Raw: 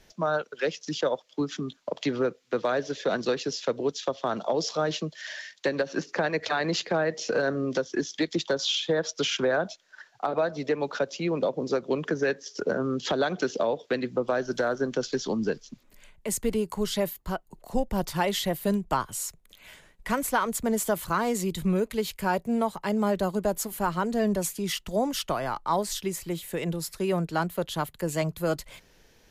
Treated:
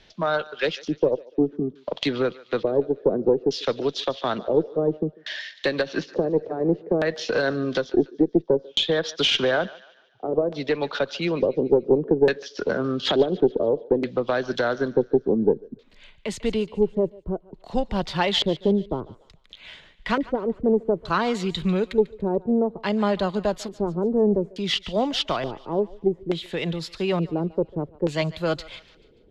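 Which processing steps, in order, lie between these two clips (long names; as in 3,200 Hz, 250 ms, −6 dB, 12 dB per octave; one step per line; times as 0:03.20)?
auto-filter low-pass square 0.57 Hz 420–3,700 Hz
feedback echo with a high-pass in the loop 145 ms, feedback 46%, high-pass 740 Hz, level −17.5 dB
harmonic generator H 2 −17 dB, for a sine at −9.5 dBFS
level +2.5 dB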